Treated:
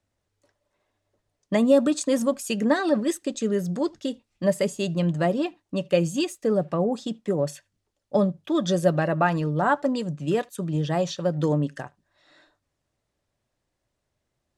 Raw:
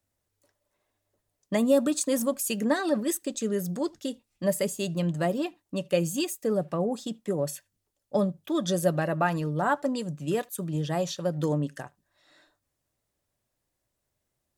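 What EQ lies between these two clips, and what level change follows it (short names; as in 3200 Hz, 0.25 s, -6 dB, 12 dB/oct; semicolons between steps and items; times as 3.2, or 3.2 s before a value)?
air absorption 66 m; +4.0 dB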